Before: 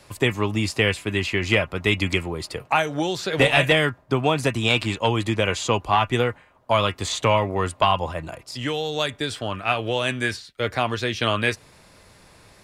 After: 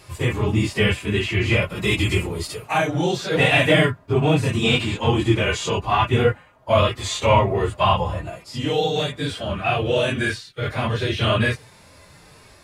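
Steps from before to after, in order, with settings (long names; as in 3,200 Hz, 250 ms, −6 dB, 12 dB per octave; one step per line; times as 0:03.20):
random phases in long frames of 50 ms
0:01.62–0:02.78: high-shelf EQ 5,100 Hz +10.5 dB
harmonic and percussive parts rebalanced percussive −15 dB
level +7 dB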